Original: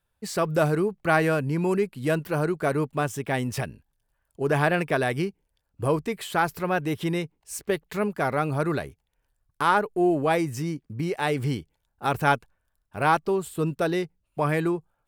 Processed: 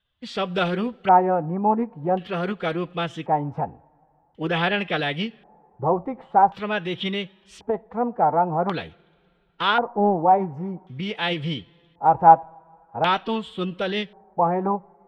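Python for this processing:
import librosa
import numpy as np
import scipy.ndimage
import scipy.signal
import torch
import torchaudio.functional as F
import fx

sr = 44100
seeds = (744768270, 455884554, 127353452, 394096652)

y = fx.rev_double_slope(x, sr, seeds[0], early_s=0.38, late_s=3.1, knee_db=-20, drr_db=17.0)
y = fx.pitch_keep_formants(y, sr, semitones=2.5)
y = fx.filter_lfo_lowpass(y, sr, shape='square', hz=0.46, low_hz=850.0, high_hz=3300.0, q=6.4)
y = F.gain(torch.from_numpy(y), -1.5).numpy()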